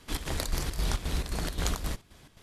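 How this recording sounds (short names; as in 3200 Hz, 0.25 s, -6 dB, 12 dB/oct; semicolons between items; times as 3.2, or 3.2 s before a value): chopped level 3.8 Hz, depth 60%, duty 65%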